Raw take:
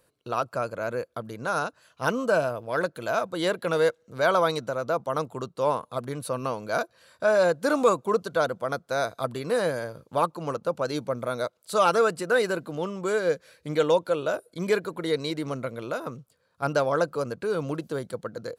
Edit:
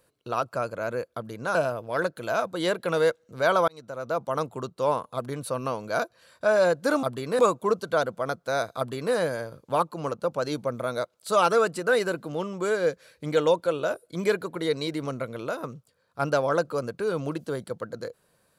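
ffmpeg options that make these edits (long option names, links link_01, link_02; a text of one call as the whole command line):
ffmpeg -i in.wav -filter_complex "[0:a]asplit=5[link_01][link_02][link_03][link_04][link_05];[link_01]atrim=end=1.552[link_06];[link_02]atrim=start=2.338:end=4.47,asetpts=PTS-STARTPTS,afade=type=out:start_time=2.128:duration=0.004:curve=hsin[link_07];[link_03]atrim=start=4.47:end=7.822,asetpts=PTS-STARTPTS,afade=type=in:duration=0.55[link_08];[link_04]atrim=start=9.208:end=9.572[link_09];[link_05]atrim=start=7.818[link_10];[link_07][link_08]concat=n=2:v=0:a=1[link_11];[link_06][link_11]acrossfade=duration=0.004:curve1=hsin:curve2=hsin[link_12];[link_12][link_09]acrossfade=duration=0.004:curve1=hsin:curve2=hsin[link_13];[link_13][link_10]acrossfade=duration=0.004:curve1=hsin:curve2=hsin" out.wav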